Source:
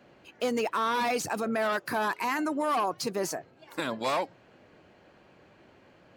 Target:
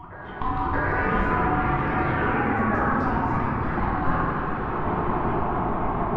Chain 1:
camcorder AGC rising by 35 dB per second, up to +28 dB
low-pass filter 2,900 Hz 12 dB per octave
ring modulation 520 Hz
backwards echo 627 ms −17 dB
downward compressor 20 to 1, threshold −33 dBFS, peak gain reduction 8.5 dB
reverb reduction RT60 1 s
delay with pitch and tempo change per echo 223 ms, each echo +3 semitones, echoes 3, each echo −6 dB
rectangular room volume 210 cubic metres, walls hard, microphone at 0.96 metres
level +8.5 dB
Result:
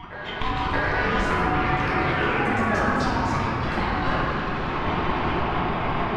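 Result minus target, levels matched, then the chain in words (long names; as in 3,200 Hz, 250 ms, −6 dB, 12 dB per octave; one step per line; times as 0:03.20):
4,000 Hz band +13.5 dB
camcorder AGC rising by 35 dB per second, up to +28 dB
low-pass filter 830 Hz 12 dB per octave
ring modulation 520 Hz
backwards echo 627 ms −17 dB
downward compressor 20 to 1, threshold −33 dBFS, peak gain reduction 7.5 dB
reverb reduction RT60 1 s
delay with pitch and tempo change per echo 223 ms, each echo +3 semitones, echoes 3, each echo −6 dB
rectangular room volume 210 cubic metres, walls hard, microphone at 0.96 metres
level +8.5 dB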